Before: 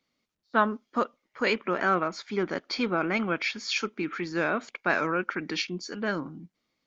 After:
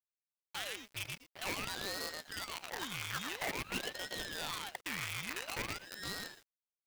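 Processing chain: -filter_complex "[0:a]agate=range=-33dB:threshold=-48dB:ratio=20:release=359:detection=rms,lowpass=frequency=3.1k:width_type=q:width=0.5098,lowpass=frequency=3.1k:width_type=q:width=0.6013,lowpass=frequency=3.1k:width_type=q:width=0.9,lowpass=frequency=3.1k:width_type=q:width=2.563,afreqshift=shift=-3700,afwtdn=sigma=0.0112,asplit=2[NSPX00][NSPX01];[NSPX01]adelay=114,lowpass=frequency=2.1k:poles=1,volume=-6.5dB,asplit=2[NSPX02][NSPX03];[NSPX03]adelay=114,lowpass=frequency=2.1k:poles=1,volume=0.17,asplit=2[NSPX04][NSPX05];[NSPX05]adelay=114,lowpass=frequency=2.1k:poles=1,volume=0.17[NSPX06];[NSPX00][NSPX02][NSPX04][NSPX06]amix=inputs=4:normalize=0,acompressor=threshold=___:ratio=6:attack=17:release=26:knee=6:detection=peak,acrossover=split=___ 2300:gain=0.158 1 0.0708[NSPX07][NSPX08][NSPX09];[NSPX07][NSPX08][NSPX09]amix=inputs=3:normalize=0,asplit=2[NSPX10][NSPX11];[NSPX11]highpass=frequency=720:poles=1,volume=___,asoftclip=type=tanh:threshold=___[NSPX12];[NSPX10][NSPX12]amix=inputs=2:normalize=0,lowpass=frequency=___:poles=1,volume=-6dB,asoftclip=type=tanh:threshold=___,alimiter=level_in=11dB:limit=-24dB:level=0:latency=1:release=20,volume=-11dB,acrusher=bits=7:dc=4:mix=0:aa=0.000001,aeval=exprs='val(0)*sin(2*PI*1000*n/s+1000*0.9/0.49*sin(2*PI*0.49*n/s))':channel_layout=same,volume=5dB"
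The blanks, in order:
-31dB, 270, 10dB, -20.5dB, 2.8k, -28dB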